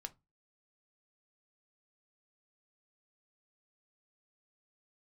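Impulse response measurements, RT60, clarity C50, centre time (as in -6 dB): 0.20 s, 22.5 dB, 3 ms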